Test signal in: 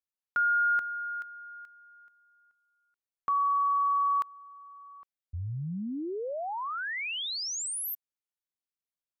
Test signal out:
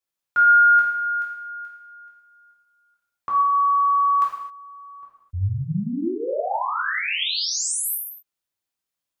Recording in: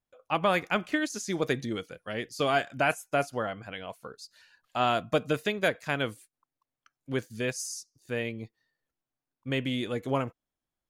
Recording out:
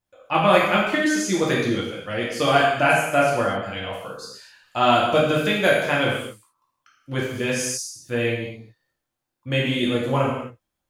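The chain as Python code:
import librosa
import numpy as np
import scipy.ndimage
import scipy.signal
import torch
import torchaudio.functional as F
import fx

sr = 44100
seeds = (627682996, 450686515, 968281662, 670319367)

y = fx.rev_gated(x, sr, seeds[0], gate_ms=290, shape='falling', drr_db=-5.0)
y = y * 10.0 ** (3.0 / 20.0)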